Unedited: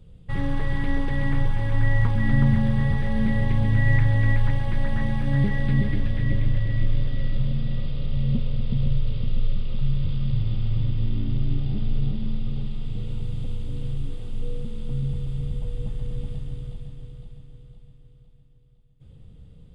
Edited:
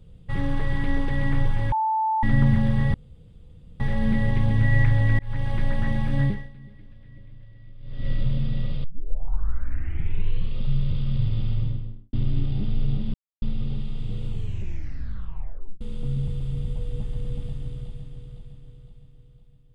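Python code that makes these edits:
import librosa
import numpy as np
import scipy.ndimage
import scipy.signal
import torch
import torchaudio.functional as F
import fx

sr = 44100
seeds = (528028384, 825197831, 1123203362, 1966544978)

y = fx.studio_fade_out(x, sr, start_s=10.6, length_s=0.67)
y = fx.edit(y, sr, fx.bleep(start_s=1.72, length_s=0.51, hz=879.0, db=-20.0),
    fx.insert_room_tone(at_s=2.94, length_s=0.86),
    fx.fade_in_span(start_s=4.33, length_s=0.32),
    fx.fade_down_up(start_s=5.37, length_s=1.86, db=-23.5, fade_s=0.33, curve='qua'),
    fx.tape_start(start_s=7.98, length_s=1.74),
    fx.insert_silence(at_s=12.28, length_s=0.28),
    fx.tape_stop(start_s=13.14, length_s=1.53), tone=tone)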